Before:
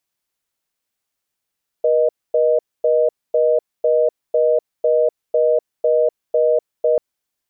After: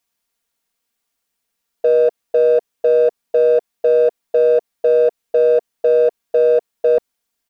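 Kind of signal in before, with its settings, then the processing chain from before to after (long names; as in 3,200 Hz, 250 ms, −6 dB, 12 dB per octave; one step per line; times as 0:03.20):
call progress tone reorder tone, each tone −15 dBFS 5.14 s
comb filter 4.3 ms, depth 55%
in parallel at −8.5 dB: hard clipping −21 dBFS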